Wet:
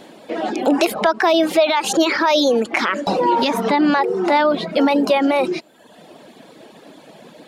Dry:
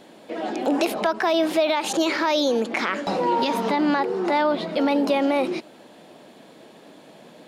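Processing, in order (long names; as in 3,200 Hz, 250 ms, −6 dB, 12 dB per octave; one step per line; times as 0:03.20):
reverb reduction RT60 0.85 s
level +6.5 dB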